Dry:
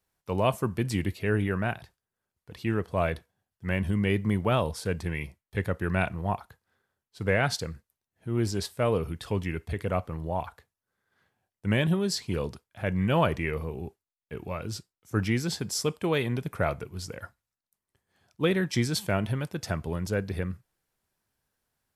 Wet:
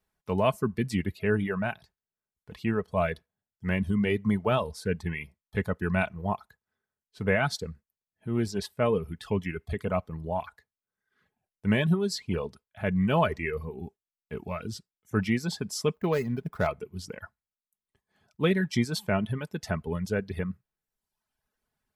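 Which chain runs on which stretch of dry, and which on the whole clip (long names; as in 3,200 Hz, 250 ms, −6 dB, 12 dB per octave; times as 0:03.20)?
0:15.94–0:16.67: running median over 15 samples + high-shelf EQ 11,000 Hz +11 dB
whole clip: reverb reduction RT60 0.98 s; bass and treble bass +2 dB, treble −5 dB; comb filter 4.7 ms, depth 36%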